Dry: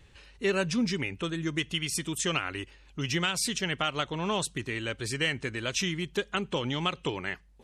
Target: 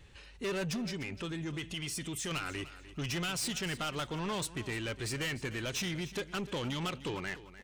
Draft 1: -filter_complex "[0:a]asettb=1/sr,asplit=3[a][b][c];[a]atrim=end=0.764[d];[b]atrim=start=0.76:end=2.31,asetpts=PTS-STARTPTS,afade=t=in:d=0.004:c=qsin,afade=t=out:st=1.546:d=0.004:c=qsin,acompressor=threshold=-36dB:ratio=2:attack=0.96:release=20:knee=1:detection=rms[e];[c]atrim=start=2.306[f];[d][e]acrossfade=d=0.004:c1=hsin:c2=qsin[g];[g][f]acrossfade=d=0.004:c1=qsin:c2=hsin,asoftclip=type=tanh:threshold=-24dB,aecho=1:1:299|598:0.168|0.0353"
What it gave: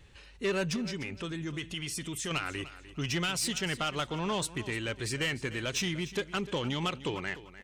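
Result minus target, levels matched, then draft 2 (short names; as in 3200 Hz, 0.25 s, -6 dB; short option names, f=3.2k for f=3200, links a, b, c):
soft clip: distortion -6 dB
-filter_complex "[0:a]asettb=1/sr,asplit=3[a][b][c];[a]atrim=end=0.764[d];[b]atrim=start=0.76:end=2.31,asetpts=PTS-STARTPTS,afade=t=in:d=0.004:c=qsin,afade=t=out:st=1.546:d=0.004:c=qsin,acompressor=threshold=-36dB:ratio=2:attack=0.96:release=20:knee=1:detection=rms[e];[c]atrim=start=2.306[f];[d][e]acrossfade=d=0.004:c1=hsin:c2=qsin[g];[g][f]acrossfade=d=0.004:c1=qsin:c2=hsin,asoftclip=type=tanh:threshold=-31.5dB,aecho=1:1:299|598:0.168|0.0353"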